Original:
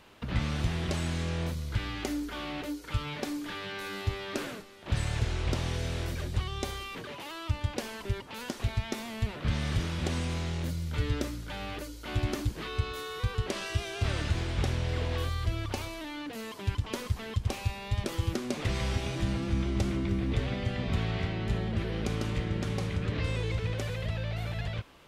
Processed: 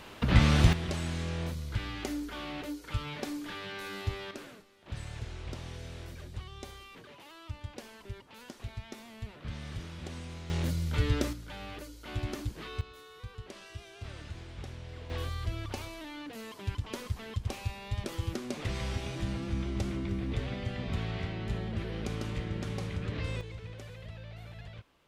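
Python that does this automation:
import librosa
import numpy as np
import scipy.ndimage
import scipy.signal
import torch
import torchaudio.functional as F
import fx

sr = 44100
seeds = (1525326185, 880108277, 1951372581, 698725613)

y = fx.gain(x, sr, db=fx.steps((0.0, 8.0), (0.73, -2.5), (4.31, -10.5), (10.5, 2.0), (11.33, -5.0), (12.81, -13.5), (15.1, -4.0), (23.41, -12.0)))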